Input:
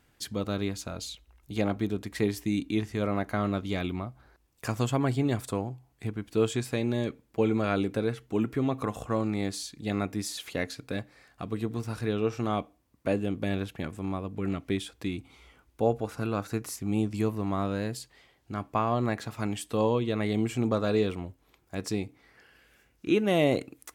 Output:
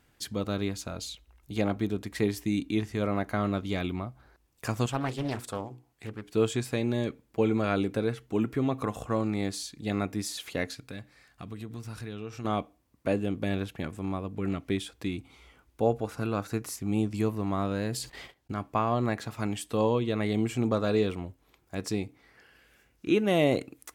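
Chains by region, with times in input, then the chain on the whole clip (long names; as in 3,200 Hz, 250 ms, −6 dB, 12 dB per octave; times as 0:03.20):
0:04.86–0:06.34: low-shelf EQ 360 Hz −7 dB + mains-hum notches 60/120/180/240/300/360/420/480 Hz + highs frequency-modulated by the lows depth 0.66 ms
0:10.75–0:12.45: parametric band 530 Hz −6 dB 2.3 octaves + downward compressor 2.5 to 1, threshold −37 dBFS
0:17.71–0:18.53: noise gate −60 dBFS, range −44 dB + envelope flattener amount 50%
whole clip: no processing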